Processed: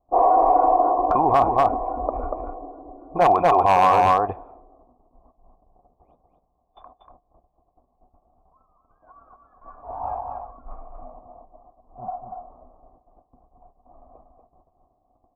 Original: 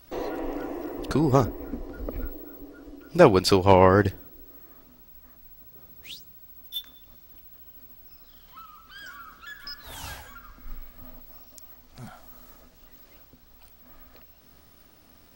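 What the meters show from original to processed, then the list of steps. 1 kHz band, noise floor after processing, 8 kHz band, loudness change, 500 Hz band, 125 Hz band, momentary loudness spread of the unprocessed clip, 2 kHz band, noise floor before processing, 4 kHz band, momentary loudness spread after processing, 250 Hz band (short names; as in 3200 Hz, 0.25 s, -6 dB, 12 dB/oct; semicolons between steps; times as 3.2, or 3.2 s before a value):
+11.0 dB, -69 dBFS, n/a, +4.0 dB, +1.0 dB, -8.5 dB, 25 LU, -1.0 dB, -55 dBFS, -8.5 dB, 20 LU, -5.0 dB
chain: low-pass opened by the level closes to 310 Hz, open at -21 dBFS; gate -55 dBFS, range -14 dB; bell 150 Hz -7 dB 1.9 oct; in parallel at 0 dB: negative-ratio compressor -27 dBFS, ratio -0.5; on the sum: vocal tract filter a; one-sided clip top -25.5 dBFS, bottom -21.5 dBFS; on a send: echo 0.238 s -5 dB; on the sum: maximiser +27.5 dB; gain -7 dB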